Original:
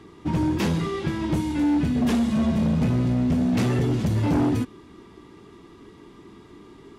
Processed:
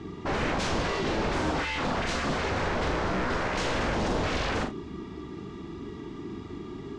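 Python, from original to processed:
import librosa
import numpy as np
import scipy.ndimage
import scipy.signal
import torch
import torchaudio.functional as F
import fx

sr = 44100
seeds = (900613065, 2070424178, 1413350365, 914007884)

y = fx.low_shelf(x, sr, hz=76.0, db=4.0)
y = fx.notch_comb(y, sr, f0_hz=520.0)
y = 10.0 ** (-30.0 / 20.0) * (np.abs((y / 10.0 ** (-30.0 / 20.0) + 3.0) % 4.0 - 2.0) - 1.0)
y = scipy.signal.sosfilt(scipy.signal.butter(4, 7100.0, 'lowpass', fs=sr, output='sos'), y)
y = fx.low_shelf(y, sr, hz=340.0, db=5.5)
y = fx.hum_notches(y, sr, base_hz=60, count=2)
y = fx.room_early_taps(y, sr, ms=(42, 74), db=(-6.0, -15.0))
y = F.gain(torch.from_numpy(y), 4.0).numpy()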